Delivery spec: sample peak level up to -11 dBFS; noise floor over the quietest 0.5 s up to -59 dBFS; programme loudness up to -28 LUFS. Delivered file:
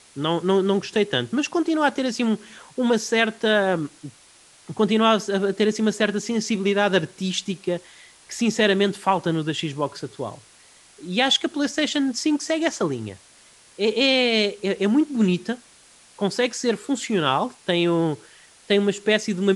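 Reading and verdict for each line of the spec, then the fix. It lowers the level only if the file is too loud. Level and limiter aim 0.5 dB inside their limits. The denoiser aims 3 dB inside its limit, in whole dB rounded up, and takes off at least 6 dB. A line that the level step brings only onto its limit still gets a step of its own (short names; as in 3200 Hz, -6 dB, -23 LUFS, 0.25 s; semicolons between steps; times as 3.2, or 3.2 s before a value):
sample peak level -6.0 dBFS: fail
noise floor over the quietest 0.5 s -52 dBFS: fail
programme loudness -22.5 LUFS: fail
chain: denoiser 6 dB, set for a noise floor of -52 dBFS; gain -6 dB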